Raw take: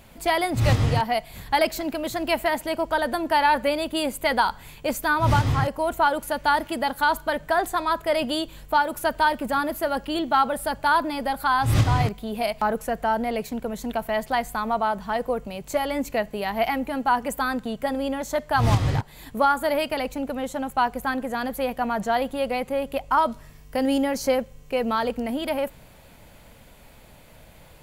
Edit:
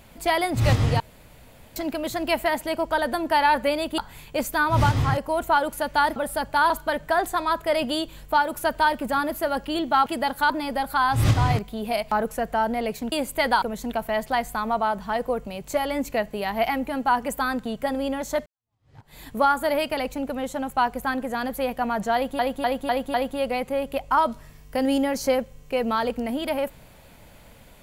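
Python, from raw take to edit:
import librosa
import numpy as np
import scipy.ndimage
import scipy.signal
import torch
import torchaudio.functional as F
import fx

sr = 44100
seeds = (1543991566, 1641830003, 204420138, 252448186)

y = fx.edit(x, sr, fx.room_tone_fill(start_s=1.0, length_s=0.76),
    fx.move(start_s=3.98, length_s=0.5, to_s=13.62),
    fx.swap(start_s=6.66, length_s=0.44, other_s=10.46, other_length_s=0.54),
    fx.fade_in_span(start_s=18.46, length_s=0.68, curve='exp'),
    fx.repeat(start_s=22.14, length_s=0.25, count=5), tone=tone)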